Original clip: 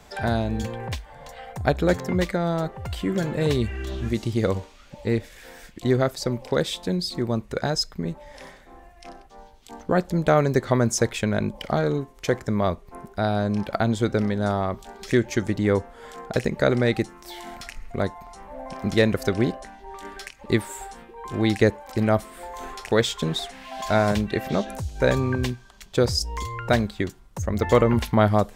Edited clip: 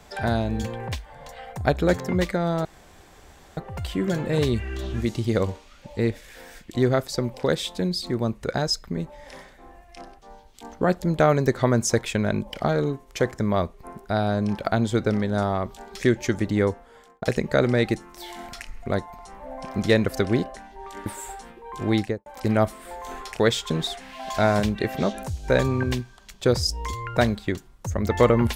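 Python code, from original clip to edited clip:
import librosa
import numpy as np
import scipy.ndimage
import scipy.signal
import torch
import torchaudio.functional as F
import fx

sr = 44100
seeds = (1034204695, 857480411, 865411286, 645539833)

y = fx.studio_fade_out(x, sr, start_s=21.43, length_s=0.35)
y = fx.edit(y, sr, fx.insert_room_tone(at_s=2.65, length_s=0.92),
    fx.fade_out_span(start_s=15.66, length_s=0.64),
    fx.cut(start_s=20.14, length_s=0.44), tone=tone)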